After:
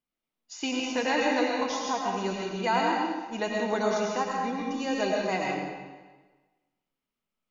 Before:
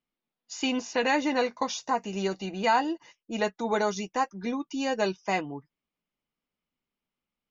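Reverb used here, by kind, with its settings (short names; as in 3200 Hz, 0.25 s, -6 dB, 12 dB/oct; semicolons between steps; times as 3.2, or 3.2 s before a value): digital reverb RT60 1.3 s, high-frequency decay 0.9×, pre-delay 65 ms, DRR -2 dB; gain -3.5 dB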